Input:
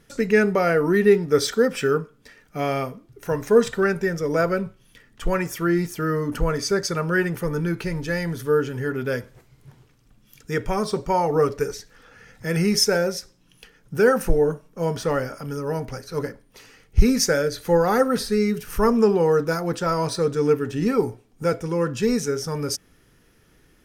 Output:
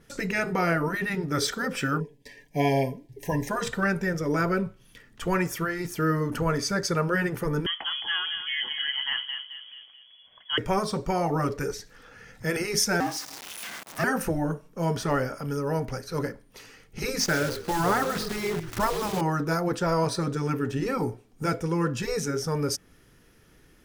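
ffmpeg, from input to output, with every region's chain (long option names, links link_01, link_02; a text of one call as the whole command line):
ffmpeg -i in.wav -filter_complex "[0:a]asettb=1/sr,asplit=3[link_01][link_02][link_03];[link_01]atrim=end=2.004[link_04];[link_02]atrim=start=2:end=3.49,asetpts=PTS-STARTPTS,afade=type=in:duration=0.004:curve=qsin,afade=type=out:start_time=1.486:duration=0.004:curve=qsin,agate=range=-33dB:threshold=-55dB:ratio=3:release=100:detection=peak,asuperstop=centerf=1300:order=20:qfactor=2.2,aecho=1:1:7.1:0.51,atrim=end_sample=65709[link_05];[link_03]atrim=start=3.486[link_06];[link_04][link_05]acrossfade=duration=0.004:curve1=hsin:curve2=qsin[link_07];[link_07][link_06]acrossfade=duration=0.004:curve1=qsin:curve2=hsin,asettb=1/sr,asplit=3[link_08][link_09][link_10];[link_08]atrim=end=7.664[link_11];[link_09]atrim=start=7.66:end=10.58,asetpts=PTS-STARTPTS,afade=type=in:duration=0.004:curve=qsin,afade=type=out:start_time=2.916:duration=0.004:curve=qsin,equalizer=frequency=130:width=1.1:gain=-6.5,asplit=2[link_12][link_13];[link_13]adelay=217,lowpass=frequency=1600:poles=1,volume=-6.5dB,asplit=2[link_14][link_15];[link_15]adelay=217,lowpass=frequency=1600:poles=1,volume=0.46,asplit=2[link_16][link_17];[link_17]adelay=217,lowpass=frequency=1600:poles=1,volume=0.46,asplit=2[link_18][link_19];[link_19]adelay=217,lowpass=frequency=1600:poles=1,volume=0.46,asplit=2[link_20][link_21];[link_21]adelay=217,lowpass=frequency=1600:poles=1,volume=0.46[link_22];[link_12][link_14][link_16][link_18][link_20][link_22]amix=inputs=6:normalize=0,atrim=end_sample=128772,lowpass=frequency=2900:width_type=q:width=0.5098,lowpass=frequency=2900:width_type=q:width=0.6013,lowpass=frequency=2900:width_type=q:width=0.9,lowpass=frequency=2900:width_type=q:width=2.563,afreqshift=-3400[link_23];[link_10]atrim=start=10.576[link_24];[link_11][link_23]acrossfade=duration=0.004:curve1=hsin:curve2=qsin[link_25];[link_25][link_24]acrossfade=duration=0.004:curve1=qsin:curve2=hsin,asettb=1/sr,asplit=3[link_26][link_27][link_28];[link_26]atrim=end=13.004[link_29];[link_27]atrim=start=13:end=14.04,asetpts=PTS-STARTPTS,afade=type=in:duration=0.004:curve=qsin,afade=type=out:start_time=1.036:duration=0.004:curve=qsin,aeval=exprs='val(0)+0.5*0.0398*sgn(val(0))':channel_layout=same,highpass=frequency=510:width=0.5412,highpass=frequency=510:width=1.3066,aeval=exprs='val(0)*sin(2*PI*250*n/s)':channel_layout=same[link_30];[link_28]atrim=start=14.036[link_31];[link_29][link_30]acrossfade=duration=0.004:curve1=hsin:curve2=qsin[link_32];[link_32][link_31]acrossfade=duration=0.004:curve1=qsin:curve2=hsin,asettb=1/sr,asplit=3[link_33][link_34][link_35];[link_33]atrim=end=17.204[link_36];[link_34]atrim=start=17.2:end=19.21,asetpts=PTS-STARTPTS,afade=type=in:duration=0.004:curve=qsin,afade=type=out:start_time=2.006:duration=0.004:curve=qsin,lowpass=5400,acrusher=bits=6:dc=4:mix=0:aa=0.000001,asplit=4[link_37][link_38][link_39][link_40];[link_38]adelay=128,afreqshift=-47,volume=-16.5dB[link_41];[link_39]adelay=256,afreqshift=-94,volume=-25.6dB[link_42];[link_40]adelay=384,afreqshift=-141,volume=-34.7dB[link_43];[link_37][link_41][link_42][link_43]amix=inputs=4:normalize=0,atrim=end_sample=88641[link_44];[link_35]atrim=start=19.206[link_45];[link_36][link_44]acrossfade=duration=0.004:curve1=hsin:curve2=qsin[link_46];[link_46][link_45]acrossfade=duration=0.004:curve1=qsin:curve2=hsin,afftfilt=real='re*lt(hypot(re,im),0.631)':imag='im*lt(hypot(re,im),0.631)':win_size=1024:overlap=0.75,adynamicequalizer=threshold=0.01:dfrequency=2100:dqfactor=0.7:tfrequency=2100:tqfactor=0.7:attack=5:release=100:ratio=0.375:range=1.5:mode=cutabove:tftype=highshelf" out.wav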